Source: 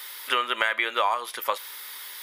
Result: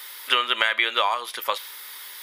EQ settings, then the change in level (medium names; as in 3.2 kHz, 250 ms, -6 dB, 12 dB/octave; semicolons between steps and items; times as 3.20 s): dynamic bell 3.7 kHz, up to +8 dB, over -41 dBFS, Q 1; 0.0 dB